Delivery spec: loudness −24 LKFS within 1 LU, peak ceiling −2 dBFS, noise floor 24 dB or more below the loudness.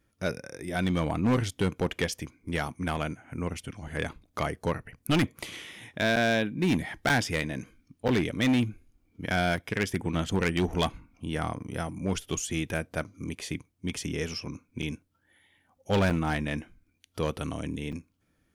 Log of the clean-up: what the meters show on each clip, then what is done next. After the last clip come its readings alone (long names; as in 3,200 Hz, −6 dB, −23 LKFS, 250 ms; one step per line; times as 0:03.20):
share of clipped samples 1.6%; peaks flattened at −19.5 dBFS; number of dropouts 7; longest dropout 6.6 ms; integrated loudness −30.0 LKFS; sample peak −19.5 dBFS; target loudness −24.0 LKFS
→ clipped peaks rebuilt −19.5 dBFS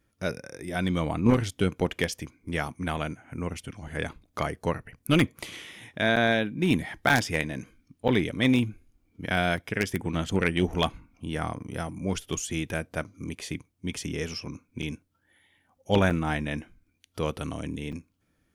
share of clipped samples 0.0%; number of dropouts 7; longest dropout 6.6 ms
→ repair the gap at 0:06.16/0:07.09/0:08.08/0:09.57/0:14.82/0:16.10/0:17.92, 6.6 ms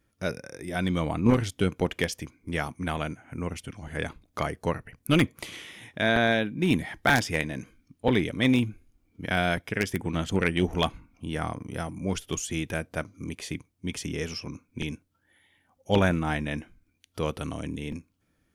number of dropouts 0; integrated loudness −28.5 LKFS; sample peak −10.5 dBFS; target loudness −24.0 LKFS
→ level +4.5 dB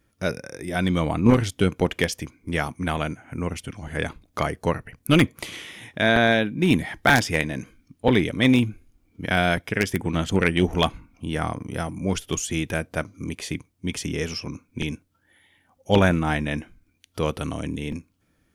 integrated loudness −24.0 LKFS; sample peak −6.0 dBFS; background noise floor −68 dBFS